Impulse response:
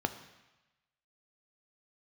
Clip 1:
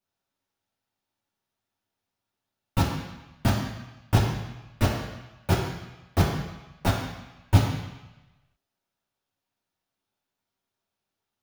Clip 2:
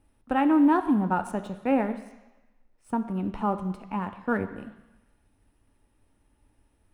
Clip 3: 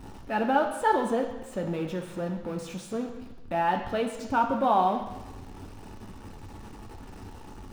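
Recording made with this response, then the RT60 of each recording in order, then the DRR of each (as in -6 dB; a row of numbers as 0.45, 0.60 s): 2; 1.0, 1.0, 1.0 s; -5.0, 8.5, 3.0 dB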